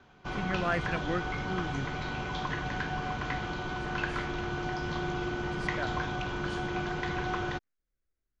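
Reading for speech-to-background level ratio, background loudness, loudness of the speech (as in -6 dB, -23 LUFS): -2.5 dB, -34.0 LUFS, -36.5 LUFS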